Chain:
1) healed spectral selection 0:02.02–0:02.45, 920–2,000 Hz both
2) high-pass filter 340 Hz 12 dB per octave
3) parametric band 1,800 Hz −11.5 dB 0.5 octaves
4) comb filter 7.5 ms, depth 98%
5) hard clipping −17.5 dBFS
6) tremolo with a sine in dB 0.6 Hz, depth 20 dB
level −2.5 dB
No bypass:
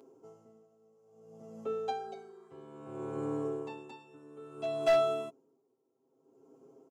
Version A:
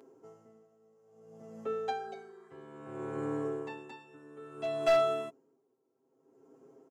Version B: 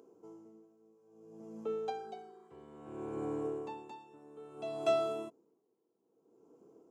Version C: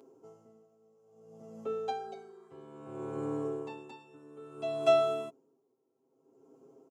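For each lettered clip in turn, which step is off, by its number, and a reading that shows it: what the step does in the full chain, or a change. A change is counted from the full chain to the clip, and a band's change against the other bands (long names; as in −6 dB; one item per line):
3, 2 kHz band +2.5 dB
4, 250 Hz band +2.5 dB
5, change in crest factor +5.5 dB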